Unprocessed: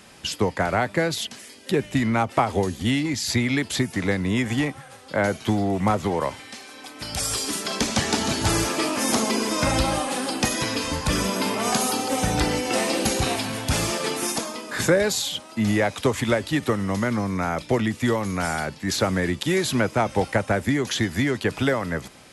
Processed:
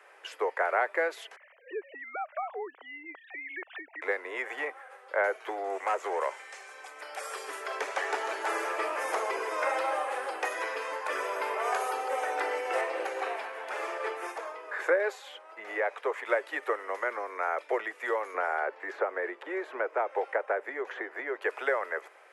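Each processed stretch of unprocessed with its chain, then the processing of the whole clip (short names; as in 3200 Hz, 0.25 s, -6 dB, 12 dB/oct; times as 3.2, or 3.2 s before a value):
1.36–4.02 sine-wave speech + compressor 2.5:1, threshold -30 dBFS
5.64–7.01 hard clip -18 dBFS + bell 7100 Hz +13 dB 1.2 oct
12.81–16.26 high shelf 6500 Hz -9 dB + tremolo 4.8 Hz, depth 28%
18.34–21.42 LPF 1100 Hz 6 dB/oct + three-band squash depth 100%
whole clip: steep high-pass 400 Hz 48 dB/oct; resonant high shelf 2800 Hz -13.5 dB, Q 1.5; gain -5 dB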